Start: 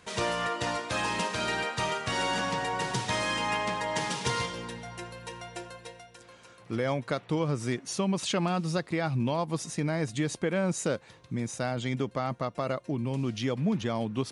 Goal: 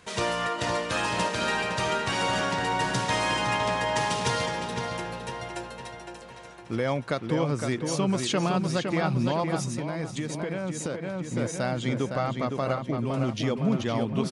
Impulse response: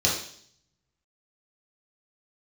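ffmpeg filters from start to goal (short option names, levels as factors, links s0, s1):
-filter_complex "[0:a]asplit=2[s0][s1];[s1]adelay=511,lowpass=f=3600:p=1,volume=0.562,asplit=2[s2][s3];[s3]adelay=511,lowpass=f=3600:p=1,volume=0.52,asplit=2[s4][s5];[s5]adelay=511,lowpass=f=3600:p=1,volume=0.52,asplit=2[s6][s7];[s7]adelay=511,lowpass=f=3600:p=1,volume=0.52,asplit=2[s8][s9];[s9]adelay=511,lowpass=f=3600:p=1,volume=0.52,asplit=2[s10][s11];[s11]adelay=511,lowpass=f=3600:p=1,volume=0.52,asplit=2[s12][s13];[s13]adelay=511,lowpass=f=3600:p=1,volume=0.52[s14];[s0][s2][s4][s6][s8][s10][s12][s14]amix=inputs=8:normalize=0,asettb=1/sr,asplit=3[s15][s16][s17];[s15]atrim=end=9.654[s18];[s16]atrim=start=9.65:end=11.36,asetpts=PTS-STARTPTS,afade=t=in:d=0.004:c=qsin,afade=t=out:st=1.706:d=0.004:c=qsin,acompressor=threshold=0.0316:ratio=6[s19];[s17]atrim=start=11.356[s20];[s18][s19]acrossfade=d=0.004:c1=hsin:c2=qsin[s21];[s21][s20]acrossfade=d=0.004:c1=qsin:c2=hsin,volume=1.26"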